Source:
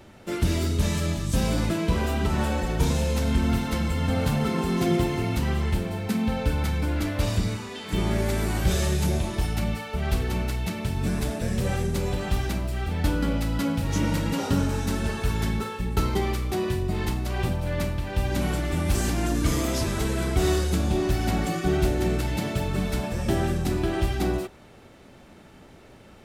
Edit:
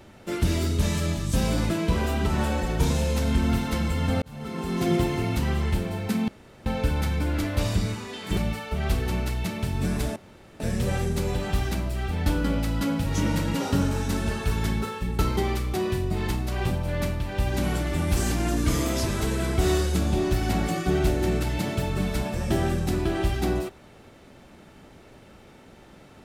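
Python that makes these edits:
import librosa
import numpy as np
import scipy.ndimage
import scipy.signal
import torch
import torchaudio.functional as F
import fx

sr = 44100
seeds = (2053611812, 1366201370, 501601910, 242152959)

y = fx.edit(x, sr, fx.fade_in_span(start_s=4.22, length_s=0.71),
    fx.insert_room_tone(at_s=6.28, length_s=0.38),
    fx.cut(start_s=7.99, length_s=1.6),
    fx.insert_room_tone(at_s=11.38, length_s=0.44), tone=tone)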